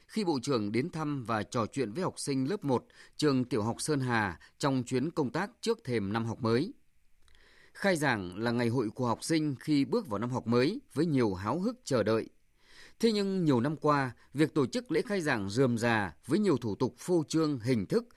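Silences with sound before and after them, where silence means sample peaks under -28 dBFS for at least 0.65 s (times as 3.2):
6.64–7.83
12.21–13.03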